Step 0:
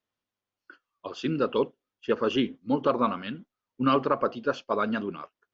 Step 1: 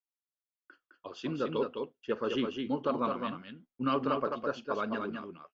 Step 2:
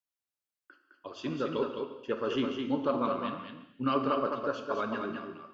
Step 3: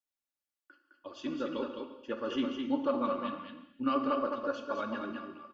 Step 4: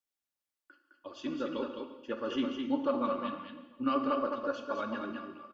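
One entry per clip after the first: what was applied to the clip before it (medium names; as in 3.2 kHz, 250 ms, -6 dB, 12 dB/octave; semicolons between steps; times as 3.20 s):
gate with hold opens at -50 dBFS; multi-tap echo 42/210/222 ms -20/-5/-17.5 dB; trim -7 dB
gated-style reverb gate 390 ms falling, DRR 5.5 dB
comb 3.5 ms, depth 68%; trim -4.5 dB
echo from a far wall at 120 m, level -28 dB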